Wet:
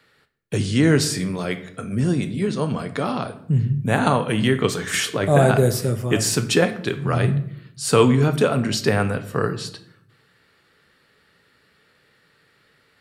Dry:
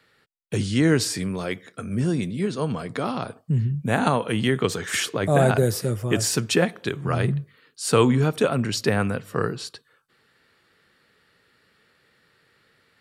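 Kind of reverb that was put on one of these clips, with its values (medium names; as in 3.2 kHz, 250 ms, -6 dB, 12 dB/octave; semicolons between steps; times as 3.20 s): simulated room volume 140 m³, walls mixed, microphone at 0.32 m; trim +2 dB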